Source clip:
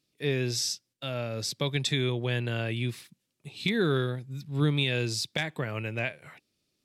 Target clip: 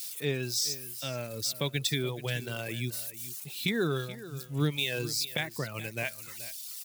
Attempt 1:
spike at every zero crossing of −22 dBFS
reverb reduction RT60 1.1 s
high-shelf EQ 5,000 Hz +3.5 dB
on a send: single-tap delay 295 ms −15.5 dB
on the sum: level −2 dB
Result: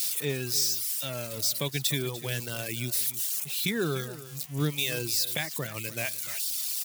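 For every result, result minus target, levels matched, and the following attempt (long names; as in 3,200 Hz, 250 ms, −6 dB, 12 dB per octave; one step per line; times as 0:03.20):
spike at every zero crossing: distortion +10 dB; echo 134 ms early
spike at every zero crossing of −32 dBFS
reverb reduction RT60 1.1 s
high-shelf EQ 5,000 Hz +3.5 dB
on a send: single-tap delay 295 ms −15.5 dB
on the sum: level −2 dB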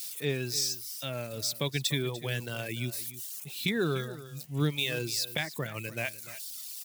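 echo 134 ms early
spike at every zero crossing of −32 dBFS
reverb reduction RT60 1.1 s
high-shelf EQ 5,000 Hz +3.5 dB
on a send: single-tap delay 429 ms −15.5 dB
on the sum: level −2 dB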